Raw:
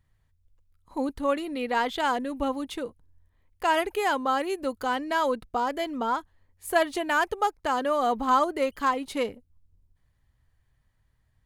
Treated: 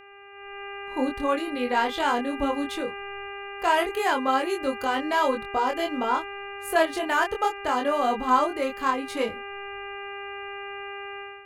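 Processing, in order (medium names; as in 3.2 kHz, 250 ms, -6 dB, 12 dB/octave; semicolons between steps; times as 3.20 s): chorus 0.21 Hz, depth 2.4 ms; mains buzz 400 Hz, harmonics 7, -42 dBFS -2 dB/octave; level rider gain up to 13 dB; trim -7.5 dB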